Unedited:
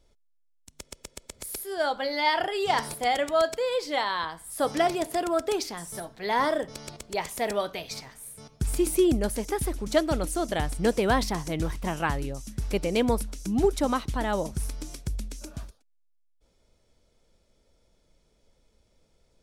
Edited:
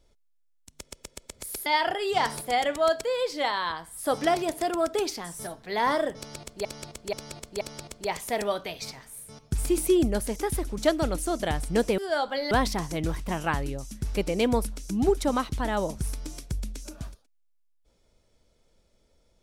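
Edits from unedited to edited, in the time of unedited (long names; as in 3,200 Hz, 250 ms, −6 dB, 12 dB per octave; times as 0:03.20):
0:01.66–0:02.19: move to 0:11.07
0:06.70–0:07.18: repeat, 4 plays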